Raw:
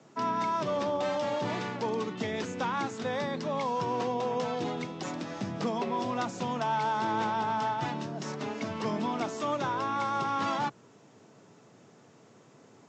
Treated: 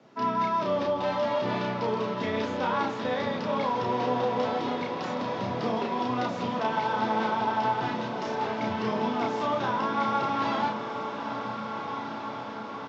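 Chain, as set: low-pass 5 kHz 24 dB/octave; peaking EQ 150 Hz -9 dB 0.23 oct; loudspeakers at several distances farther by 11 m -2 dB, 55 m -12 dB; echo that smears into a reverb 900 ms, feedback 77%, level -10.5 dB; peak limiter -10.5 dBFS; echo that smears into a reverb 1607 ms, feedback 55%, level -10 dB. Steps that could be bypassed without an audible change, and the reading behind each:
peak limiter -10.5 dBFS: peak at its input -15.0 dBFS

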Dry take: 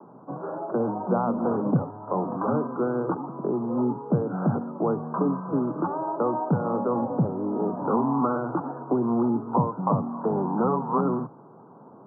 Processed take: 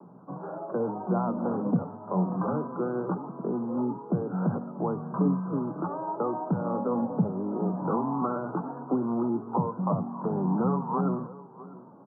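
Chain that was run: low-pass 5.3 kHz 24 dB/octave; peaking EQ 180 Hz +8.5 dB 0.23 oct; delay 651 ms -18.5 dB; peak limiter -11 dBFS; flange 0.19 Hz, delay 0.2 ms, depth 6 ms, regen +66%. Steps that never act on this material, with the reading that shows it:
low-pass 5.3 kHz: input has nothing above 1.5 kHz

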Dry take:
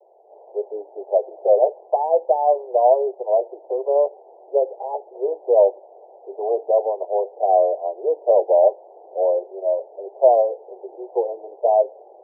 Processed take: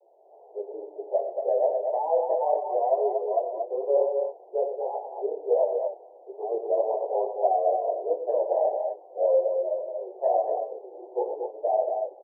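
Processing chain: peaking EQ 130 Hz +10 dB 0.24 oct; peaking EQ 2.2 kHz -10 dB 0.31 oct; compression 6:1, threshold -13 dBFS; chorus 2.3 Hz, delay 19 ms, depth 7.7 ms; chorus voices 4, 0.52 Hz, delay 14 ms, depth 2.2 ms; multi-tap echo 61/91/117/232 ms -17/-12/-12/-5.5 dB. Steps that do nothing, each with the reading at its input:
peaking EQ 130 Hz: input has nothing below 320 Hz; peaking EQ 2.2 kHz: input has nothing above 1 kHz

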